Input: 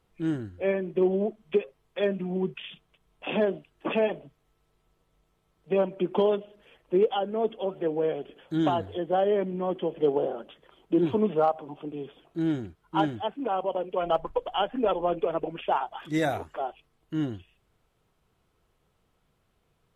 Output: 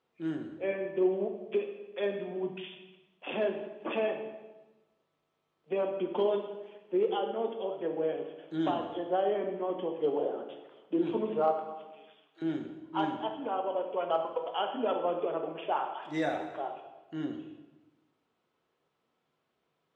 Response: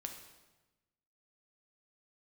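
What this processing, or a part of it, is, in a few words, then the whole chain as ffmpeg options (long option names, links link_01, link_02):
supermarket ceiling speaker: -filter_complex "[0:a]asettb=1/sr,asplit=3[link_01][link_02][link_03];[link_01]atrim=end=11.594[link_04];[link_02]atrim=start=11.59:end=12.42,asetpts=PTS-STARTPTS,afade=type=in:duration=0.004:curve=qsin,afade=type=out:start_time=0.826:duration=0.004:curve=qsin,highpass=1200[link_05];[link_03]atrim=start=12.416[link_06];[link_04][link_05]acrossfade=duration=0.004:curve1=hsin:curve2=qsin[link_07];[link_07][link_06]acrossfade=duration=0.004:curve1=qsin:curve2=hsin,highpass=240,lowpass=5300[link_08];[1:a]atrim=start_sample=2205[link_09];[link_08][link_09]afir=irnorm=-1:irlink=0,volume=-1.5dB"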